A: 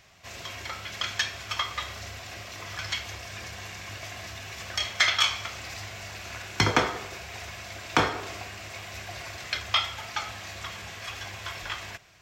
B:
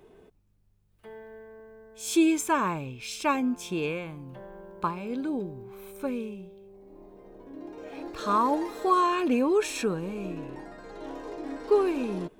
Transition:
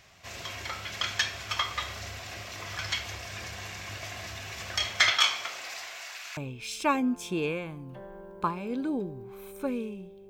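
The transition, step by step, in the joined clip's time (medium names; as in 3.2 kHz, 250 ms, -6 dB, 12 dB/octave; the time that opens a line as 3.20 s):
A
5.10–6.37 s: high-pass 210 Hz -> 1.4 kHz
6.37 s: go over to B from 2.77 s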